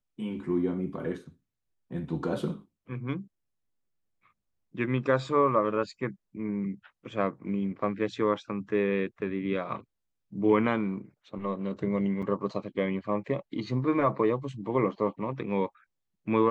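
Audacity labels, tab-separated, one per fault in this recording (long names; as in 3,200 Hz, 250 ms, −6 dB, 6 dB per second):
12.220000	12.230000	drop-out 6.4 ms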